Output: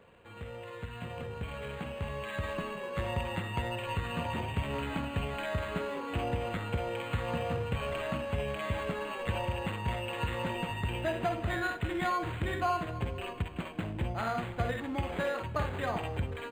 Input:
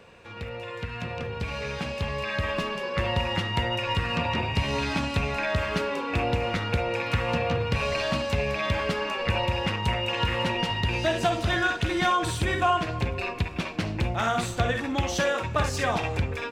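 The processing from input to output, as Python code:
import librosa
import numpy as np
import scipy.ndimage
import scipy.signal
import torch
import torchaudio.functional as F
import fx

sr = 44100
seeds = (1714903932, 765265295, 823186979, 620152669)

y = np.interp(np.arange(len(x)), np.arange(len(x))[::8], x[::8])
y = y * 10.0 ** (-6.5 / 20.0)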